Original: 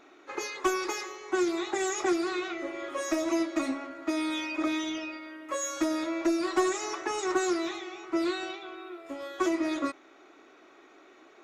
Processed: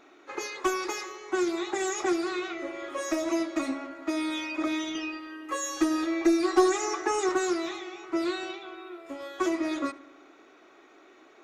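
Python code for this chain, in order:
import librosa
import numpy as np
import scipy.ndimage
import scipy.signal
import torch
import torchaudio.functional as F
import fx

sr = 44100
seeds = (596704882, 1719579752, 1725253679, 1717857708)

y = fx.comb(x, sr, ms=2.5, depth=0.95, at=(4.95, 7.29))
y = fx.echo_filtered(y, sr, ms=74, feedback_pct=70, hz=2800.0, wet_db=-18.5)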